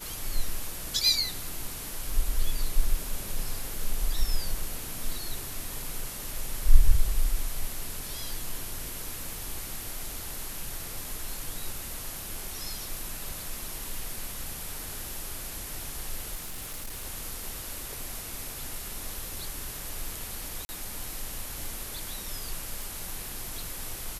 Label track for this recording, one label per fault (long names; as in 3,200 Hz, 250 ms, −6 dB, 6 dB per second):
16.350000	17.060000	clipping −33 dBFS
20.650000	20.690000	drop-out 40 ms
22.820000	22.820000	click